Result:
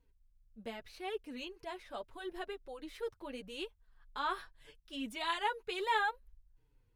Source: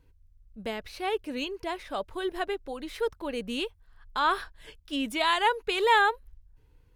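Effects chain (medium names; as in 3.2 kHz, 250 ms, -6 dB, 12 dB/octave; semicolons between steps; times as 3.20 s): flange 0.79 Hz, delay 4.1 ms, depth 4.9 ms, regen -2%; trim -7.5 dB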